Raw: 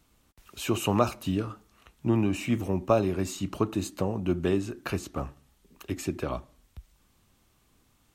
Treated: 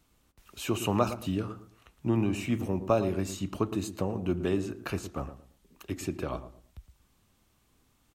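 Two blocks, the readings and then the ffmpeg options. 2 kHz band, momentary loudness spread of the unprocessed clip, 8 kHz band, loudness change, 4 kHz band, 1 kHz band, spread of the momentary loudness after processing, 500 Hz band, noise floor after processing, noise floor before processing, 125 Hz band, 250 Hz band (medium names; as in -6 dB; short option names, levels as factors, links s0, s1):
-2.5 dB, 13 LU, -2.5 dB, -2.0 dB, -2.5 dB, -2.5 dB, 13 LU, -2.0 dB, -69 dBFS, -67 dBFS, -2.0 dB, -2.0 dB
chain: -filter_complex "[0:a]asplit=2[s0][s1];[s1]adelay=113,lowpass=f=880:p=1,volume=0.299,asplit=2[s2][s3];[s3]adelay=113,lowpass=f=880:p=1,volume=0.31,asplit=2[s4][s5];[s5]adelay=113,lowpass=f=880:p=1,volume=0.31[s6];[s0][s2][s4][s6]amix=inputs=4:normalize=0,volume=0.75"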